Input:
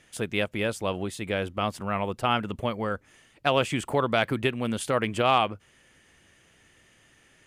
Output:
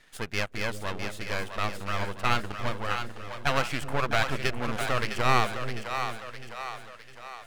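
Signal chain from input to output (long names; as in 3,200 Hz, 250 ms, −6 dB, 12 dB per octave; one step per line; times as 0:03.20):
parametric band 1,600 Hz +9.5 dB 1.8 octaves
half-wave rectification
echo with a time of its own for lows and highs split 480 Hz, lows 361 ms, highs 657 ms, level −7 dB
level −2.5 dB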